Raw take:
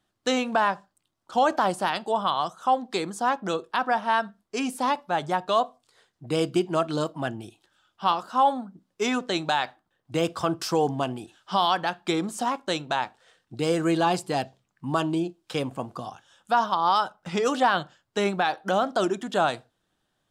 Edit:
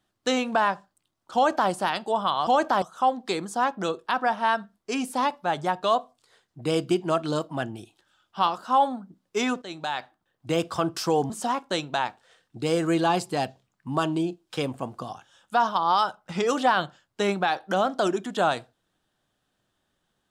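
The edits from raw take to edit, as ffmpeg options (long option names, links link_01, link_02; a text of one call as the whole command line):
ffmpeg -i in.wav -filter_complex "[0:a]asplit=5[link_01][link_02][link_03][link_04][link_05];[link_01]atrim=end=2.472[link_06];[link_02]atrim=start=1.348:end=1.702[link_07];[link_03]atrim=start=2.468:end=9.27,asetpts=PTS-STARTPTS,afade=type=out:start_time=6.798:duration=0.004:curve=hsin:silence=0.188365[link_08];[link_04]atrim=start=9.27:end=10.952,asetpts=PTS-STARTPTS,afade=type=in:duration=0.97:curve=qsin:silence=0.188365[link_09];[link_05]atrim=start=12.268[link_10];[link_06][link_07]acrossfade=duration=0.004:curve1=hsin:curve2=hsin[link_11];[link_08][link_09]concat=n=2:v=0:a=1[link_12];[link_11][link_12]acrossfade=duration=0.004:curve1=hsin:curve2=hsin[link_13];[link_13][link_10]acrossfade=duration=0.004:curve1=hsin:curve2=hsin" out.wav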